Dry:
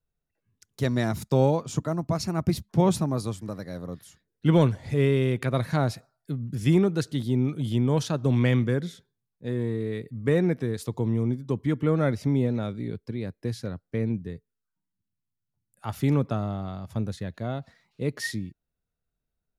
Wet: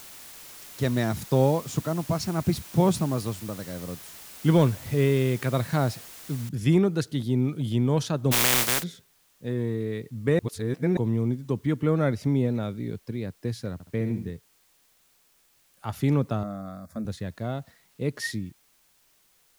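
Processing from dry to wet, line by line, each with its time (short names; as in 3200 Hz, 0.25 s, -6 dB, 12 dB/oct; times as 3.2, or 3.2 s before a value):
6.49 noise floor step -45 dB -64 dB
8.31–8.82 spectral contrast lowered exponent 0.18
10.39–10.97 reverse
13.73–14.31 flutter echo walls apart 11.7 m, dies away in 0.47 s
16.43–17.05 fixed phaser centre 590 Hz, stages 8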